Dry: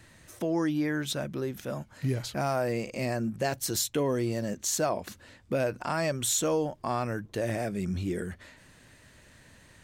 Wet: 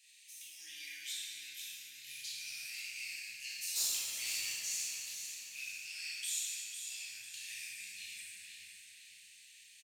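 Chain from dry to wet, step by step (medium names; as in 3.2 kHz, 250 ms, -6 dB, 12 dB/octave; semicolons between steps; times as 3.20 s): elliptic high-pass 2.4 kHz, stop band 50 dB; compression 2.5:1, threshold -42 dBFS, peak gain reduction 11.5 dB; 3.67–4.55 s: waveshaping leveller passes 2; feedback delay 498 ms, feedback 44%, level -8 dB; plate-style reverb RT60 3 s, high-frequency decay 0.55×, DRR -9 dB; trim -5 dB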